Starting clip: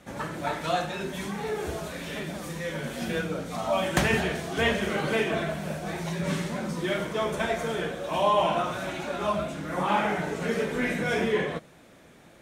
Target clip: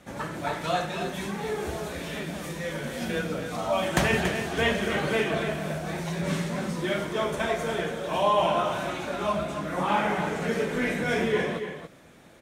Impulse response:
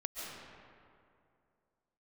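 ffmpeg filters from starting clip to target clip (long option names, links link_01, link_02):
-af "aecho=1:1:282:0.376"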